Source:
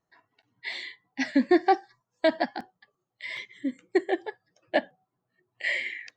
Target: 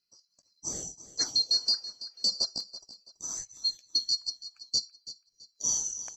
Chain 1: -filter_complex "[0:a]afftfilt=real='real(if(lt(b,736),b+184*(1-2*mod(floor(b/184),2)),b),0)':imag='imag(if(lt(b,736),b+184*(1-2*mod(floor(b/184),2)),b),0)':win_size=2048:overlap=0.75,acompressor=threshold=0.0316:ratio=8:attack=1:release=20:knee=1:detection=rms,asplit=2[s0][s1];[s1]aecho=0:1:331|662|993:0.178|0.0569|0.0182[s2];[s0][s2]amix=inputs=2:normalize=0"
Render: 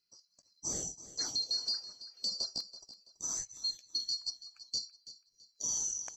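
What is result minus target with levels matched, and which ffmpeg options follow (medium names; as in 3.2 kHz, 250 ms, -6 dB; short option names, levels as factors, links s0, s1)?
compression: peak gain reduction +8.5 dB
-filter_complex "[0:a]afftfilt=real='real(if(lt(b,736),b+184*(1-2*mod(floor(b/184),2)),b),0)':imag='imag(if(lt(b,736),b+184*(1-2*mod(floor(b/184),2)),b),0)':win_size=2048:overlap=0.75,acompressor=threshold=0.0944:ratio=8:attack=1:release=20:knee=1:detection=rms,asplit=2[s0][s1];[s1]aecho=0:1:331|662|993:0.178|0.0569|0.0182[s2];[s0][s2]amix=inputs=2:normalize=0"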